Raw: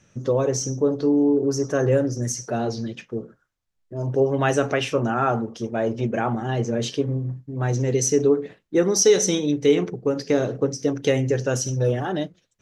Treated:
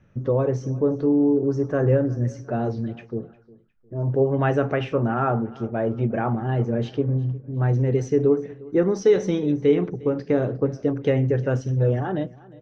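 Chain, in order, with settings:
low-pass filter 2,000 Hz 12 dB per octave
low-shelf EQ 120 Hz +9.5 dB
repeating echo 356 ms, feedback 34%, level −21.5 dB
level −1.5 dB

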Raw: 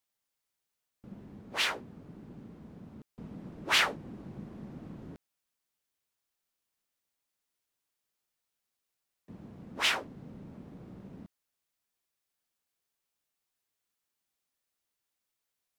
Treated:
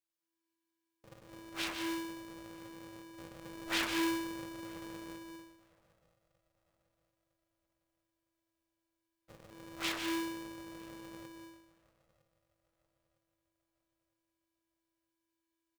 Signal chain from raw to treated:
gain on one half-wave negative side −7 dB
flat-topped bell 510 Hz −9.5 dB 1.1 octaves
double-tracking delay 18 ms −10.5 dB
feedback echo with a band-pass in the loop 958 ms, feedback 48%, band-pass 360 Hz, level −16.5 dB
on a send at −4 dB: convolution reverb RT60 0.80 s, pre-delay 100 ms
on the sum: ring modulator with a square carrier 330 Hz
level −7 dB

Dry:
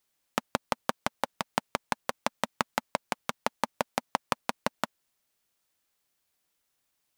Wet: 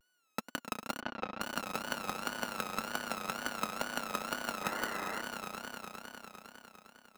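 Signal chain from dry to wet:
samples sorted by size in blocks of 32 samples
high-pass filter 210 Hz 12 dB per octave
in parallel at −2 dB: brickwall limiter −13.5 dBFS, peak gain reduction 7.5 dB
on the sum: soft clipping −18.5 dBFS, distortion −5 dB
on a send: echo that builds up and dies away 101 ms, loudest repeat 5, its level −8.5 dB
on the sum: tape wow and flutter 130 cents
0:01.00–0:01.41: high-frequency loss of the air 240 metres
0:04.63–0:05.22: sound drawn into the spectrogram noise 270–2,100 Hz −38 dBFS
level −4 dB

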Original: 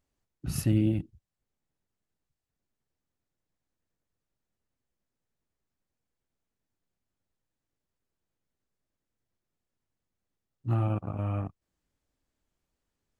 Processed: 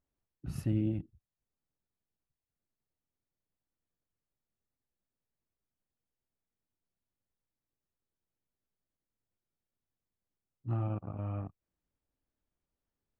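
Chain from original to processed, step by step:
high-shelf EQ 3,000 Hz −11.5 dB
level −6 dB

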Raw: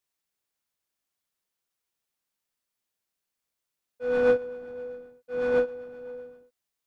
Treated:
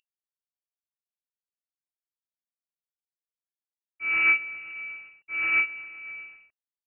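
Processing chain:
variable-slope delta modulation 32 kbit/s
parametric band 80 Hz +12 dB 0.59 octaves
voice inversion scrambler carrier 2,800 Hz

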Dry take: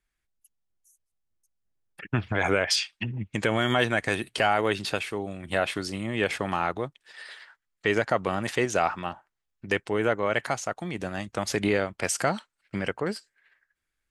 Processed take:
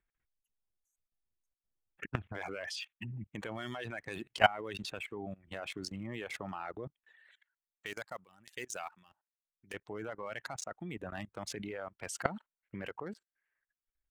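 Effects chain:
adaptive Wiener filter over 9 samples
reverb reduction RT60 1.6 s
0:07.31–0:09.74: first-order pre-emphasis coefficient 0.9
output level in coarse steps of 22 dB
level +3 dB

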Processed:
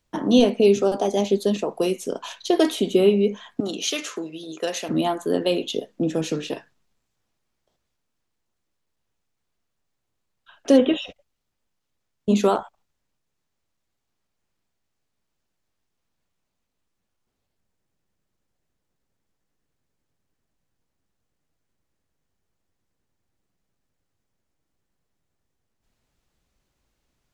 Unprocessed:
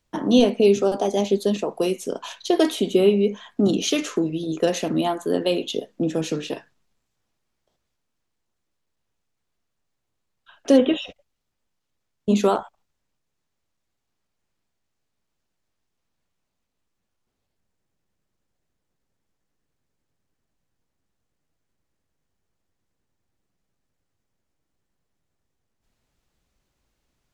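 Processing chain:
0:03.60–0:04.89: high-pass filter 880 Hz 6 dB per octave

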